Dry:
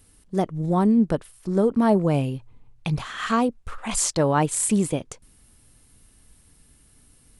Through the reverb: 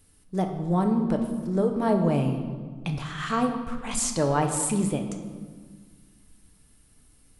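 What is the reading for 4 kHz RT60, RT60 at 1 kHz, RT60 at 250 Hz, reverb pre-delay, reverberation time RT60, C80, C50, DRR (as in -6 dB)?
1.1 s, 1.5 s, 2.2 s, 7 ms, 1.6 s, 8.5 dB, 7.0 dB, 4.0 dB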